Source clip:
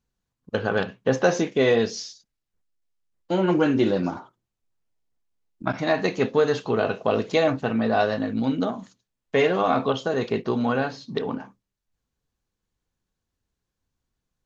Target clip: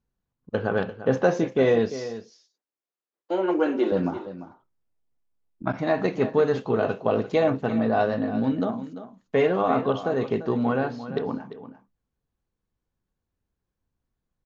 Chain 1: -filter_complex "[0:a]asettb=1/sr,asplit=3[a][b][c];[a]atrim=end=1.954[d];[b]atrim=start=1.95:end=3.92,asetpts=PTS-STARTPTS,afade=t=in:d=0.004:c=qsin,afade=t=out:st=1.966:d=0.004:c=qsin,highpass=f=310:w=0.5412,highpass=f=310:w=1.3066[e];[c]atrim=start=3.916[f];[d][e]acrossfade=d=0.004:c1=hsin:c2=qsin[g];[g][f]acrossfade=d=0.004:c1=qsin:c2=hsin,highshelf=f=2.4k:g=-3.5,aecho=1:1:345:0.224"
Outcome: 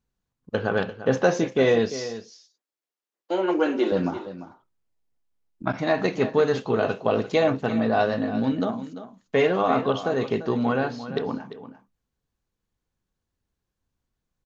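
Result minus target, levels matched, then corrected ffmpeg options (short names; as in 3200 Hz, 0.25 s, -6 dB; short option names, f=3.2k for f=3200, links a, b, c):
4000 Hz band +5.0 dB
-filter_complex "[0:a]asettb=1/sr,asplit=3[a][b][c];[a]atrim=end=1.954[d];[b]atrim=start=1.95:end=3.92,asetpts=PTS-STARTPTS,afade=t=in:d=0.004:c=qsin,afade=t=out:st=1.966:d=0.004:c=qsin,highpass=f=310:w=0.5412,highpass=f=310:w=1.3066[e];[c]atrim=start=3.916[f];[d][e]acrossfade=d=0.004:c1=hsin:c2=qsin[g];[g][f]acrossfade=d=0.004:c1=qsin:c2=hsin,highshelf=f=2.4k:g=-12,aecho=1:1:345:0.224"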